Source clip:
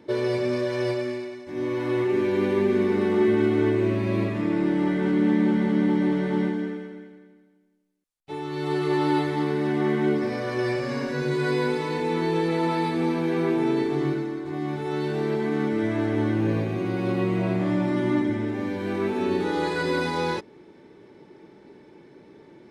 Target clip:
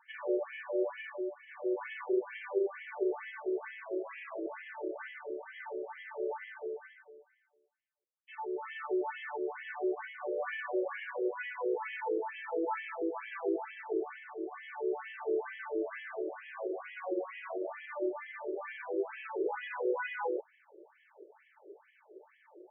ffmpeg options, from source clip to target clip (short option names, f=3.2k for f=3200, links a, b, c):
-af "acompressor=threshold=-24dB:ratio=6,afftfilt=real='re*between(b*sr/1024,430*pow(2400/430,0.5+0.5*sin(2*PI*2.2*pts/sr))/1.41,430*pow(2400/430,0.5+0.5*sin(2*PI*2.2*pts/sr))*1.41)':imag='im*between(b*sr/1024,430*pow(2400/430,0.5+0.5*sin(2*PI*2.2*pts/sr))/1.41,430*pow(2400/430,0.5+0.5*sin(2*PI*2.2*pts/sr))*1.41)':win_size=1024:overlap=0.75"